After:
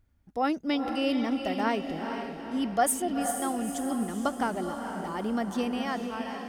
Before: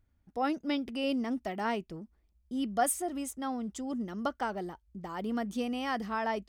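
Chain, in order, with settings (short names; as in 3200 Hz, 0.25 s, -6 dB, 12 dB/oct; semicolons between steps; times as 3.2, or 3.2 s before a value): ending faded out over 0.86 s; diffused feedback echo 0.459 s, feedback 49%, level -6 dB; gain +3.5 dB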